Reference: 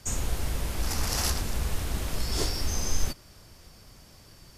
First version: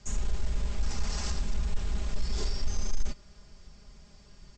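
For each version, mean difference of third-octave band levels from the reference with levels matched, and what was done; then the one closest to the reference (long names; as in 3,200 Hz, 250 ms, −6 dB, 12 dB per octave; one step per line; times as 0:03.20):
6.0 dB: soft clipping −24 dBFS, distortion −12 dB
Butterworth low-pass 8,000 Hz 96 dB per octave
low-shelf EQ 130 Hz +9 dB
comb filter 4.9 ms, depth 69%
level −7 dB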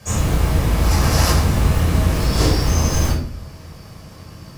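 4.5 dB: noise that follows the level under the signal 22 dB
high-pass filter 56 Hz
high-shelf EQ 2,600 Hz −7 dB
rectangular room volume 610 cubic metres, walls furnished, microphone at 5.7 metres
level +6 dB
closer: second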